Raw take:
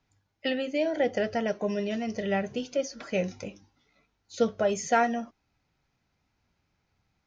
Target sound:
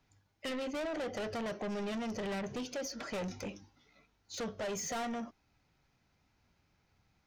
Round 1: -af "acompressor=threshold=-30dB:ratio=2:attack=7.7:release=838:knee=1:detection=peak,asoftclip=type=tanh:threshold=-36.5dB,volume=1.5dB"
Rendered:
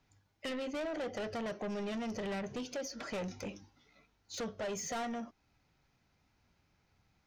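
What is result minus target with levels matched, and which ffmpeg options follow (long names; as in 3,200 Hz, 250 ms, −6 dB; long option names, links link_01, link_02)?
downward compressor: peak gain reduction +3 dB
-af "acompressor=threshold=-24dB:ratio=2:attack=7.7:release=838:knee=1:detection=peak,asoftclip=type=tanh:threshold=-36.5dB,volume=1.5dB"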